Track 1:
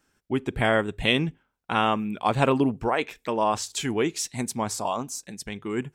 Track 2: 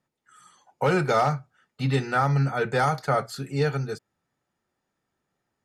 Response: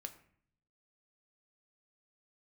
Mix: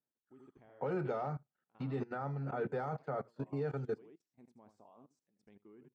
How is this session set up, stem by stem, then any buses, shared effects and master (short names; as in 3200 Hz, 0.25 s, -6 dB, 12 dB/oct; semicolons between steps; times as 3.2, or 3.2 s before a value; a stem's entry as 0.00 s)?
-11.5 dB, 0.00 s, send -20.5 dB, echo send -12 dB, auto duck -15 dB, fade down 1.00 s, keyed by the second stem
+0.5 dB, 0.00 s, no send, echo send -23.5 dB, dry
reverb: on, RT60 0.55 s, pre-delay 7 ms
echo: echo 79 ms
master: level quantiser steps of 16 dB; band-pass 360 Hz, Q 0.62; upward expander 1.5:1, over -60 dBFS